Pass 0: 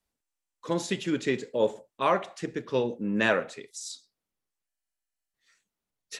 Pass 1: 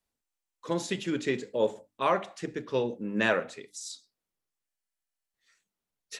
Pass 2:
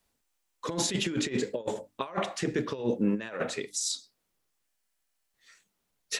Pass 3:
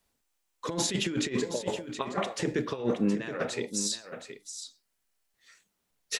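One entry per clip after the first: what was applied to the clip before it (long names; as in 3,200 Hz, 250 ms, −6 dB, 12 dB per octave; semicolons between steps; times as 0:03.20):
mains-hum notches 50/100/150/200/250/300 Hz; level −1.5 dB
compressor whose output falls as the input rises −33 dBFS, ratio −0.5; level +4.5 dB
single-tap delay 720 ms −10 dB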